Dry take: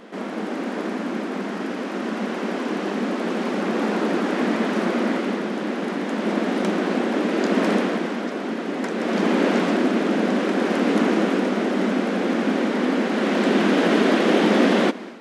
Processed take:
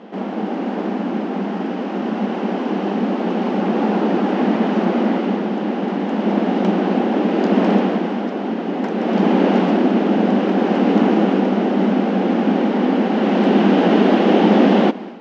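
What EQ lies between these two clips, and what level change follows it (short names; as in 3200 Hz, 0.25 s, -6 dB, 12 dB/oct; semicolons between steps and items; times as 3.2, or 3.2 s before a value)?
speaker cabinet 180–6100 Hz, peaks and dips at 190 Hz +7 dB, 810 Hz +8 dB, 2900 Hz +6 dB; tilt shelf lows +5 dB; 0.0 dB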